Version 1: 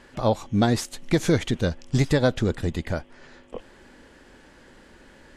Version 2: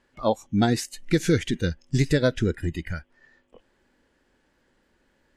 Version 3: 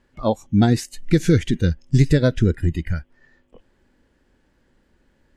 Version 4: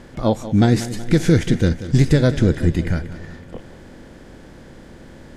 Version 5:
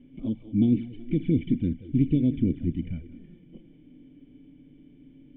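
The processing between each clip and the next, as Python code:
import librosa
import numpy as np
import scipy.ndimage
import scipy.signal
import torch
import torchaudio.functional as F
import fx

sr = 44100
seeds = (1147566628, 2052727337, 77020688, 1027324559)

y1 = fx.noise_reduce_blind(x, sr, reduce_db=16)
y2 = fx.low_shelf(y1, sr, hz=250.0, db=10.0)
y3 = fx.bin_compress(y2, sr, power=0.6)
y3 = fx.echo_feedback(y3, sr, ms=186, feedback_pct=56, wet_db=-14.0)
y3 = y3 * librosa.db_to_amplitude(-1.0)
y4 = fx.env_flanger(y3, sr, rest_ms=7.9, full_db=-9.5)
y4 = fx.formant_cascade(y4, sr, vowel='i')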